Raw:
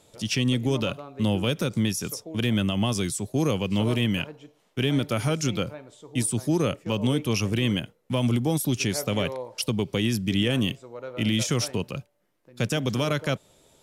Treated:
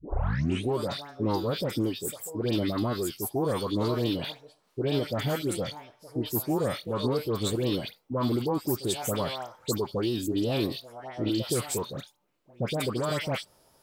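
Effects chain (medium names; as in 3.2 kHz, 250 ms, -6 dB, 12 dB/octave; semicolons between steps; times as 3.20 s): tape start-up on the opening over 0.71 s; formant shift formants +6 st; phase dispersion highs, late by 108 ms, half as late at 1.7 kHz; trim -3.5 dB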